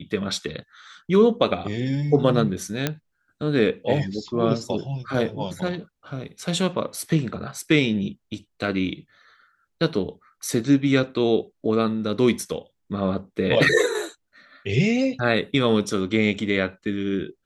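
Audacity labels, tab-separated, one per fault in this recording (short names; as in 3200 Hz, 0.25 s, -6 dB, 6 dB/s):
2.870000	2.870000	pop -7 dBFS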